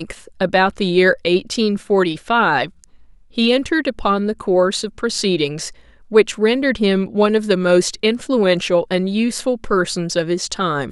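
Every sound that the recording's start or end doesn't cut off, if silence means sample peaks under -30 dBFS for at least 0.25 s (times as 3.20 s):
3.37–5.69 s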